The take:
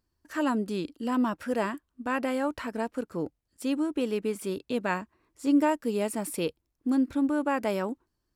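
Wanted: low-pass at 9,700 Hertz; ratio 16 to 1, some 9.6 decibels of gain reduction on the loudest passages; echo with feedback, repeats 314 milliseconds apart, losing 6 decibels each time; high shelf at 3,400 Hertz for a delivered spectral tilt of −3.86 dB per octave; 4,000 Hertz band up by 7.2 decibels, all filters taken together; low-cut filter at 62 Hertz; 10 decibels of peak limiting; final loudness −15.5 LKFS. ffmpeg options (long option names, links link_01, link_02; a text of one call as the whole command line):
ffmpeg -i in.wav -af "highpass=62,lowpass=9700,highshelf=frequency=3400:gain=7,equalizer=frequency=4000:width_type=o:gain=5,acompressor=threshold=-27dB:ratio=16,alimiter=level_in=4dB:limit=-24dB:level=0:latency=1,volume=-4dB,aecho=1:1:314|628|942|1256|1570|1884:0.501|0.251|0.125|0.0626|0.0313|0.0157,volume=21dB" out.wav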